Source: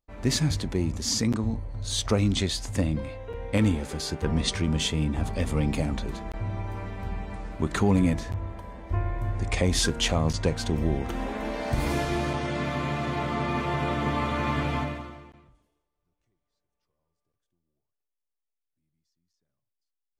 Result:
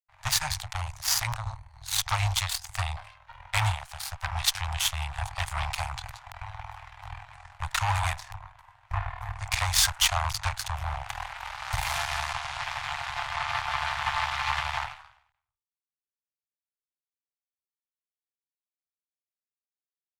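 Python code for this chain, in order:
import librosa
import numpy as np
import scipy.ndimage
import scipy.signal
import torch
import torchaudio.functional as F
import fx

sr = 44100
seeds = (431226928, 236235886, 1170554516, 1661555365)

y = fx.cheby_harmonics(x, sr, harmonics=(7, 8), levels_db=(-17, -20), full_scale_db=-11.5)
y = scipy.signal.sosfilt(scipy.signal.ellip(3, 1.0, 40, [110.0, 800.0], 'bandstop', fs=sr, output='sos'), y)
y = fx.low_shelf(y, sr, hz=200.0, db=-7.5)
y = F.gain(torch.from_numpy(y), 5.0).numpy()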